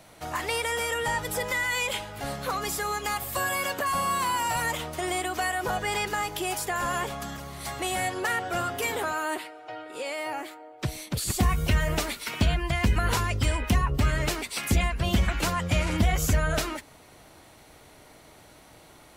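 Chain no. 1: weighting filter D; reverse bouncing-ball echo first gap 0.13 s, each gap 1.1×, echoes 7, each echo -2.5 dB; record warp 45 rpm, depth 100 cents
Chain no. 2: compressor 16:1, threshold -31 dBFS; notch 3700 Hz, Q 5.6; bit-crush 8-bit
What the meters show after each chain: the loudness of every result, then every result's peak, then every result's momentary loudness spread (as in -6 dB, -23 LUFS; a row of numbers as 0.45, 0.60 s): -19.5, -35.0 LUFS; -5.0, -20.0 dBFS; 9, 16 LU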